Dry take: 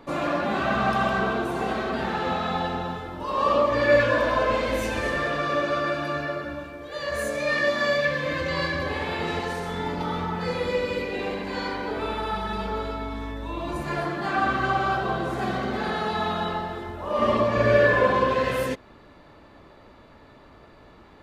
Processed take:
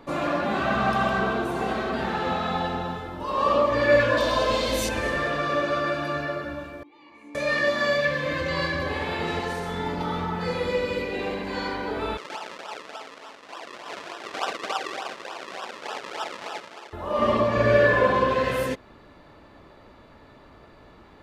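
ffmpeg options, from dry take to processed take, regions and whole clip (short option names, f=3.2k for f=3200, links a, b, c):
-filter_complex "[0:a]asettb=1/sr,asplit=3[a][b][c];[a]atrim=end=4.174[d];[b]atrim=start=4.17:end=4.89,asetpts=PTS-STARTPTS,afade=t=in:d=0.004:c=qsin,afade=t=out:st=0.716:d=0.004:c=qsin,highshelf=f=2.9k:t=q:w=1.5:g=8,bandreject=f=1.5k:w=18[e];[c]atrim=start=4.886[f];[d][e]acrossfade=d=0.004:c1=hsin:c2=qsin[g];[g][f]acrossfade=d=0.004:c1=qsin:c2=hsin,asettb=1/sr,asplit=3[h][i][j];[h]atrim=end=6.834[k];[i]atrim=start=6.83:end=7.35,asetpts=PTS-STARTPTS,afade=t=in:d=0.004:c=qsin,afade=t=out:st=0.516:d=0.004:c=qsin,asplit=3[l][m][n];[l]bandpass=f=300:t=q:w=8,volume=0dB[o];[m]bandpass=f=870:t=q:w=8,volume=-6dB[p];[n]bandpass=f=2.24k:t=q:w=8,volume=-9dB[q];[o][p][q]amix=inputs=3:normalize=0,lowshelf=f=230:g=-8[r];[j]atrim=start=7.346[s];[k][r]acrossfade=d=0.004:c1=hsin:c2=qsin[t];[t][s]acrossfade=d=0.004:c1=qsin:c2=hsin,asettb=1/sr,asplit=3[u][v][w];[u]atrim=end=12.174[x];[v]atrim=start=12.17:end=16.93,asetpts=PTS-STARTPTS,afade=t=in:d=0.004:c=qsin,afade=t=out:st=4.756:d=0.004:c=qsin,tiltshelf=f=1.2k:g=-5.5,acrusher=samples=40:mix=1:aa=0.000001:lfo=1:lforange=40:lforate=3.4,highpass=710,lowpass=5.1k[y];[w]atrim=start=16.926[z];[x][y]acrossfade=d=0.004:c1=hsin:c2=qsin[aa];[aa][z]acrossfade=d=0.004:c1=qsin:c2=hsin"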